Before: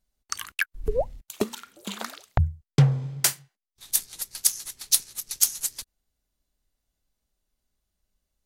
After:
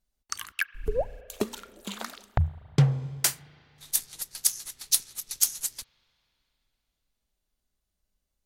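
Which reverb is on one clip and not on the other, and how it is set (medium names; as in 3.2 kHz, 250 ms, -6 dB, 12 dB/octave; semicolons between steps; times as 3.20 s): spring tank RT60 3.3 s, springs 34/40 ms, chirp 35 ms, DRR 19.5 dB; trim -2.5 dB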